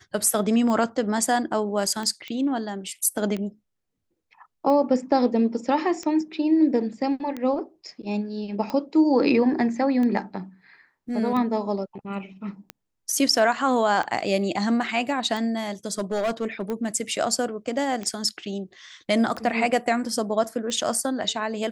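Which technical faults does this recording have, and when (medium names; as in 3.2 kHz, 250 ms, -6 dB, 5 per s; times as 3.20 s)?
tick 45 rpm -18 dBFS
2.28 s: pop -22 dBFS
15.87–16.88 s: clipped -20.5 dBFS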